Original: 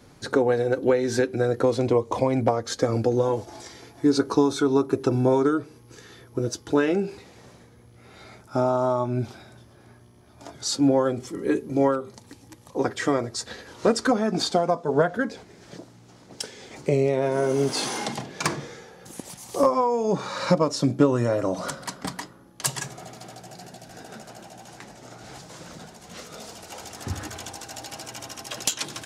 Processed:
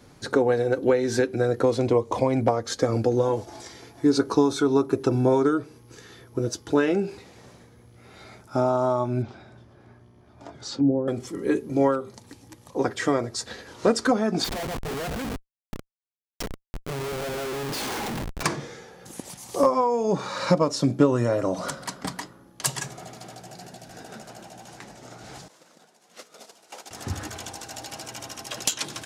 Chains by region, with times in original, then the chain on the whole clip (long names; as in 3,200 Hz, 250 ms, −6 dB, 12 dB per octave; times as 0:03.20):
0:09.22–0:11.08: low-pass filter 2,300 Hz 6 dB per octave + treble cut that deepens with the level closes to 390 Hz, closed at −19.5 dBFS
0:14.44–0:18.43: single-tap delay 130 ms −21.5 dB + flanger 1.4 Hz, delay 1.1 ms, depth 6.7 ms, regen +72% + comparator with hysteresis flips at −37.5 dBFS
0:25.48–0:26.91: variable-slope delta modulation 64 kbit/s + noise gate −40 dBFS, range −13 dB + high-pass filter 290 Hz
whole clip: no processing